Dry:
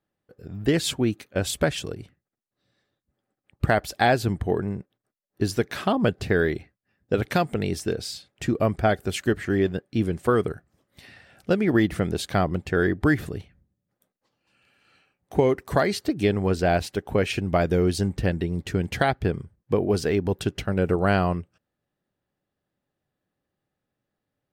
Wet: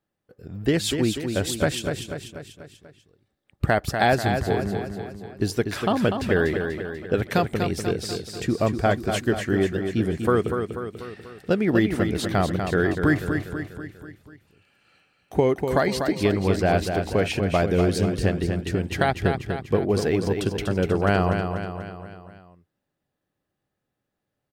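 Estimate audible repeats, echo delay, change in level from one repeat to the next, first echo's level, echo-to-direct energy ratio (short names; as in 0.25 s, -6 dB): 5, 0.244 s, -5.5 dB, -6.5 dB, -5.0 dB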